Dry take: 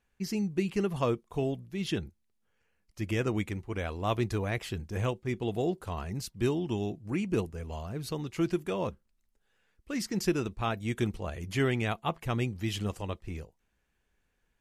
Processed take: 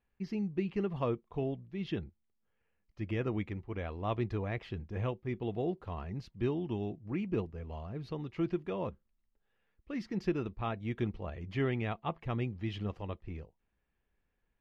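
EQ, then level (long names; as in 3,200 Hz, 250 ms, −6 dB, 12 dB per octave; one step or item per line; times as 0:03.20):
high-frequency loss of the air 280 metres
notch filter 1,500 Hz, Q 16
−3.5 dB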